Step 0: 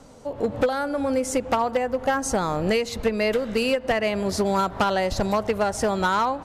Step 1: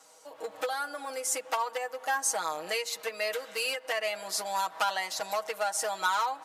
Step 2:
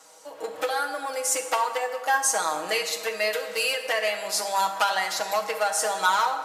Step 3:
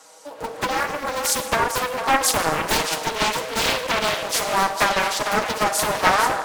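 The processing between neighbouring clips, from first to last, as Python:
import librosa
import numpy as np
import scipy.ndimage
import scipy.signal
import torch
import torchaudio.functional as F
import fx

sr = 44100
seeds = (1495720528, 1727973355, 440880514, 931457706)

y1 = scipy.signal.sosfilt(scipy.signal.butter(2, 790.0, 'highpass', fs=sr, output='sos'), x)
y1 = fx.high_shelf(y1, sr, hz=6800.0, db=11.5)
y1 = y1 + 0.82 * np.pad(y1, (int(6.3 * sr / 1000.0), 0))[:len(y1)]
y1 = y1 * librosa.db_to_amplitude(-7.0)
y2 = fx.rev_plate(y1, sr, seeds[0], rt60_s=1.4, hf_ratio=0.65, predelay_ms=0, drr_db=5.5)
y2 = y2 * librosa.db_to_amplitude(5.0)
y3 = y2 + 10.0 ** (-8.0 / 20.0) * np.pad(y2, (int(451 * sr / 1000.0), 0))[:len(y2)]
y3 = fx.doppler_dist(y3, sr, depth_ms=0.85)
y3 = y3 * librosa.db_to_amplitude(4.0)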